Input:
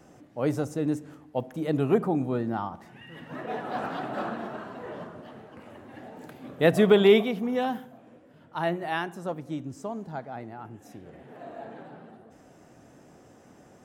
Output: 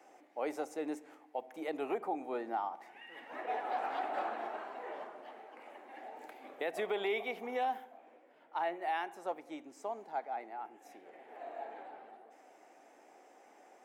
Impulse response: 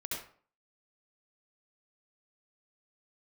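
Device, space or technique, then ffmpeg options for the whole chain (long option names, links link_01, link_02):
laptop speaker: -filter_complex "[0:a]asettb=1/sr,asplit=3[link_01][link_02][link_03];[link_01]atrim=end=7.844[link_04];[link_02]atrim=start=7.84:end=8.82,asetpts=PTS-STARTPTS,afade=type=in:duration=0.004:curve=qsin,afade=type=out:start_time=0.976:duration=0.004:curve=qsin,highshelf=frequency=5900:gain=-5.5[link_05];[link_03]atrim=start=8.816[link_06];[link_04][link_05]acrossfade=duration=0.004:curve1=hsin:curve2=qsin[link_07];[link_07][link_06]acrossfade=duration=0.004:curve1=qsin:curve2=hsin,highpass=frequency=330:width=0.5412,highpass=frequency=330:width=1.3066,equalizer=frequency=800:width_type=o:width=0.46:gain=9.5,equalizer=frequency=2200:width_type=o:width=0.47:gain=9,alimiter=limit=-18.5dB:level=0:latency=1:release=230,volume=-7.5dB"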